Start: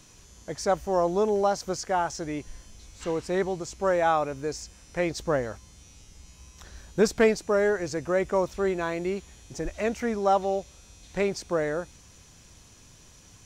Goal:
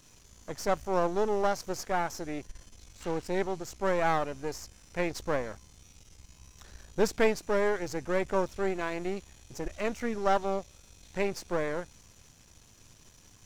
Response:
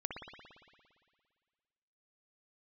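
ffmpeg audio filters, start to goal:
-af "aeval=exprs='if(lt(val(0),0),0.251*val(0),val(0))':c=same,volume=0.891"

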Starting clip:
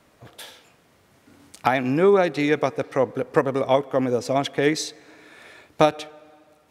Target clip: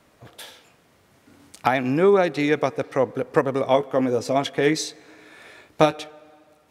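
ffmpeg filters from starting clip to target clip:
-filter_complex "[0:a]asettb=1/sr,asplit=3[s0][s1][s2];[s0]atrim=end=3.634[s3];[s1]atrim=start=3.63:end=6.04,asetpts=PTS-STARTPTS,afade=t=in:d=0.004:c=qsin,afade=t=out:st=2.406:d=0.004:c=qsin,asplit=2[s4][s5];[s5]adelay=19,volume=0.299[s6];[s4][s6]amix=inputs=2:normalize=0,atrim=end_sample=106281[s7];[s2]atrim=start=6.036[s8];[s3][s7]acrossfade=d=0.004:c1=hsin:c2=qsin[s9];[s9][s8]acrossfade=d=0.004:c1=qsin:c2=hsin"

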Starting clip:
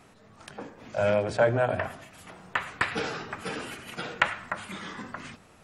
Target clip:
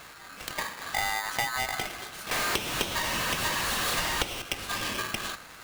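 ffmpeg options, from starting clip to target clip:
-filter_complex "[0:a]asettb=1/sr,asplit=3[s0][s1][s2];[s0]atrim=end=2.314[s3];[s1]atrim=start=2.31:end=4.42,asetpts=PTS-STARTPTS,afade=t=in:d=0.004:c=qsin,afade=t=out:st=2.106:d=0.004:c=qsin,aeval=exprs='val(0)+0.5*0.0282*sgn(val(0))':c=same[s4];[s2]atrim=start=4.416[s5];[s3][s4]acrossfade=d=0.004:c1=hsin:c2=qsin[s6];[s6][s5]acrossfade=d=0.004:c1=qsin:c2=hsin,acompressor=threshold=0.0178:ratio=12,aeval=exprs='val(0)*sgn(sin(2*PI*1400*n/s))':c=same,volume=2.66"

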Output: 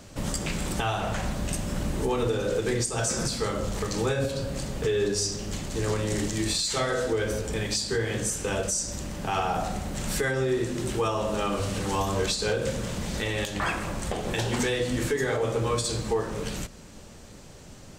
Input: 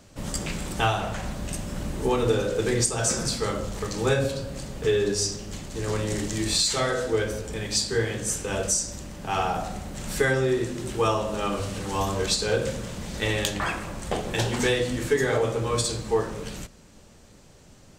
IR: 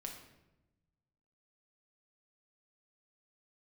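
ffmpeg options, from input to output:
-filter_complex "[0:a]asplit=2[s0][s1];[s1]acompressor=threshold=0.0141:ratio=6,volume=0.841[s2];[s0][s2]amix=inputs=2:normalize=0,alimiter=limit=0.141:level=0:latency=1:release=172"

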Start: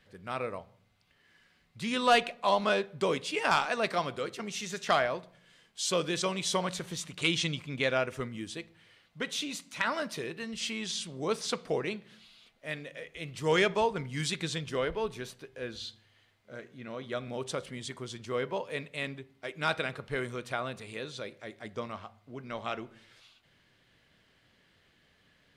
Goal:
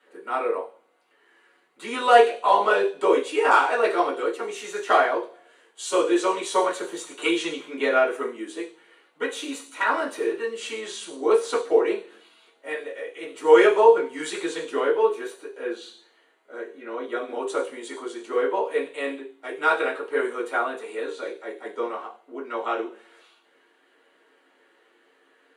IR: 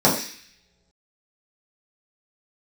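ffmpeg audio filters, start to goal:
-filter_complex "[0:a]highpass=f=330:w=0.5412,highpass=f=330:w=1.3066[s0];[1:a]atrim=start_sample=2205,asetrate=74970,aresample=44100[s1];[s0][s1]afir=irnorm=-1:irlink=0,volume=0.282"

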